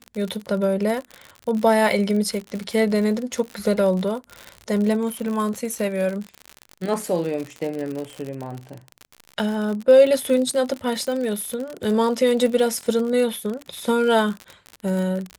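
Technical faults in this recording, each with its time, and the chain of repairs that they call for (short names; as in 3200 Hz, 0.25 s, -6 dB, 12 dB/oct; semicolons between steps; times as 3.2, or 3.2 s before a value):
crackle 59/s -26 dBFS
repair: de-click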